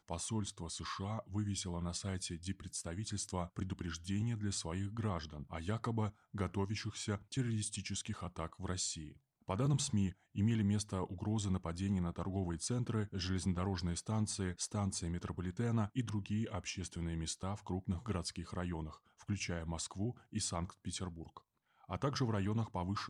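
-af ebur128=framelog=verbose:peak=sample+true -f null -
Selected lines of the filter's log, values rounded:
Integrated loudness:
  I:         -39.4 LUFS
  Threshold: -49.5 LUFS
Loudness range:
  LRA:         4.3 LU
  Threshold: -59.5 LUFS
  LRA low:   -41.5 LUFS
  LRA high:  -37.3 LUFS
Sample peak:
  Peak:      -22.1 dBFS
True peak:
  Peak:      -22.0 dBFS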